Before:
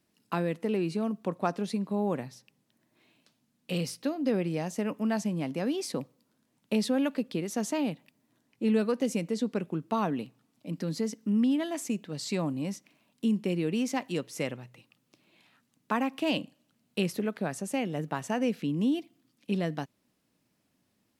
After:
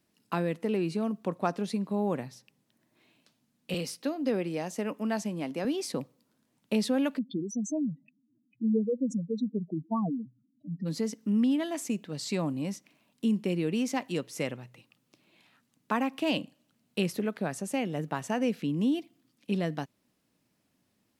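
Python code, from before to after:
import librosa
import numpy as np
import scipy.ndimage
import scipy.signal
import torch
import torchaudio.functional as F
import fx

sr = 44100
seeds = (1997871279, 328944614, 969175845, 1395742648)

y = fx.highpass(x, sr, hz=210.0, slope=12, at=(3.74, 5.65))
y = fx.spec_expand(y, sr, power=4.0, at=(7.17, 10.85), fade=0.02)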